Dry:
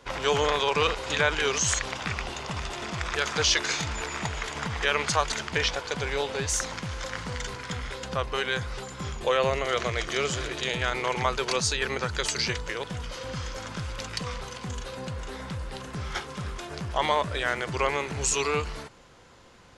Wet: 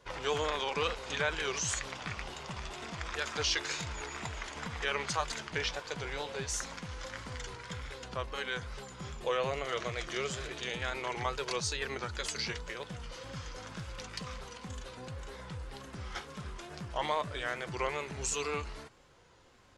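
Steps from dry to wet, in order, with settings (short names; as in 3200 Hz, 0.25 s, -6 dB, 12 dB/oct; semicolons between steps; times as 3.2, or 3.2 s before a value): wow and flutter 63 cents; flange 0.26 Hz, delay 1.8 ms, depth 5.2 ms, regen -63%; gain -4 dB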